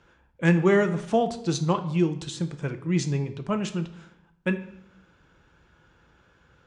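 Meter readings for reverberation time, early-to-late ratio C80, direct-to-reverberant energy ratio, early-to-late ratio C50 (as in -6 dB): 0.80 s, 16.0 dB, 8.0 dB, 12.5 dB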